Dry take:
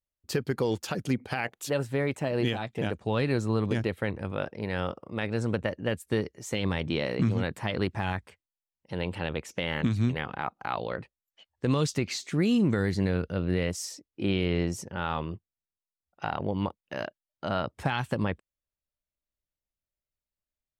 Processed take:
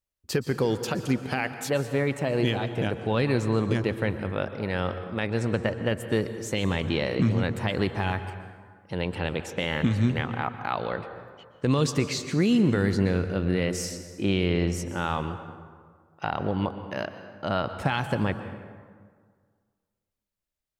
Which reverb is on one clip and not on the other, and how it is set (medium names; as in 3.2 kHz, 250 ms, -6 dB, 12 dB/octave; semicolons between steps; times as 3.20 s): plate-style reverb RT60 1.8 s, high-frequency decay 0.55×, pre-delay 110 ms, DRR 10 dB; trim +2.5 dB